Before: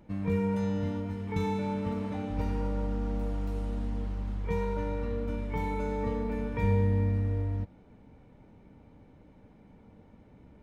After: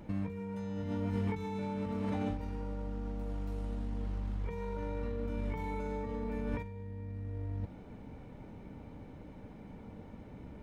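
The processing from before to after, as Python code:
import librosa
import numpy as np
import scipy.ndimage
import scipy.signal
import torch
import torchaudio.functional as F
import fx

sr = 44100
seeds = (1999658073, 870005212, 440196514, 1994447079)

y = fx.over_compress(x, sr, threshold_db=-37.0, ratio=-1.0)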